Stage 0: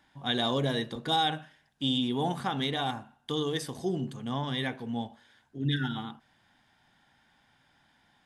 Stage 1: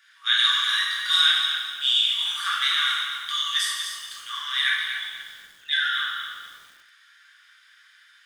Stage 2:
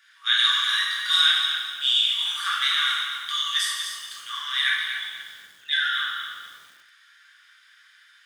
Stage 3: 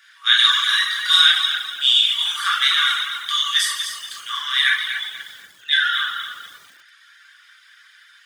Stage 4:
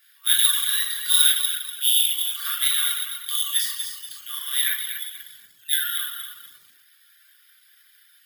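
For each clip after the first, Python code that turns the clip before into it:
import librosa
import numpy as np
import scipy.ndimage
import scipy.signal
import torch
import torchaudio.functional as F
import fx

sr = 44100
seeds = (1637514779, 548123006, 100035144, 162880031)

y1 = scipy.signal.sosfilt(scipy.signal.cheby1(6, 1.0, 1200.0, 'highpass', fs=sr, output='sos'), x)
y1 = fx.rev_plate(y1, sr, seeds[0], rt60_s=1.2, hf_ratio=0.85, predelay_ms=0, drr_db=-5.0)
y1 = fx.echo_crushed(y1, sr, ms=241, feedback_pct=35, bits=9, wet_db=-8.0)
y1 = F.gain(torch.from_numpy(y1), 8.0).numpy()
y2 = scipy.signal.sosfilt(scipy.signal.butter(2, 76.0, 'highpass', fs=sr, output='sos'), y1)
y3 = fx.dereverb_blind(y2, sr, rt60_s=0.55)
y3 = F.gain(torch.from_numpy(y3), 6.5).numpy()
y4 = fx.peak_eq(y3, sr, hz=900.0, db=-12.0, octaves=2.7)
y4 = fx.notch(y4, sr, hz=6000.0, q=9.5)
y4 = (np.kron(scipy.signal.resample_poly(y4, 1, 3), np.eye(3)[0]) * 3)[:len(y4)]
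y4 = F.gain(torch.from_numpy(y4), -4.5).numpy()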